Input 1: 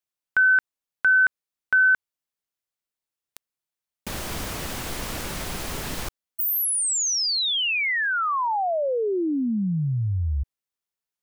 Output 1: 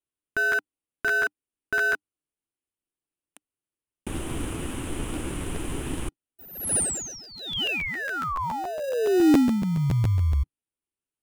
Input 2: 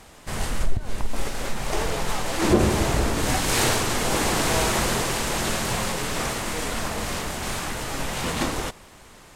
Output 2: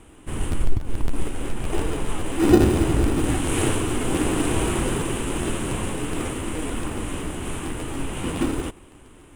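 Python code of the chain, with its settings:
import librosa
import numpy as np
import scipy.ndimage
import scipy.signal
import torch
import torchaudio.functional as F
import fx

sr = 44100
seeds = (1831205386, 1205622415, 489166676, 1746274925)

p1 = fx.curve_eq(x, sr, hz=(120.0, 200.0, 300.0, 640.0, 1000.0, 1900.0, 3000.0, 4700.0, 9700.0, 14000.0), db=(0, -4, 7, -8, -4, -8, -2, -23, 2, -22))
p2 = fx.sample_hold(p1, sr, seeds[0], rate_hz=1100.0, jitter_pct=0)
p3 = p1 + (p2 * librosa.db_to_amplitude(-9.0))
y = fx.buffer_crackle(p3, sr, first_s=0.51, period_s=0.14, block=512, kind='repeat')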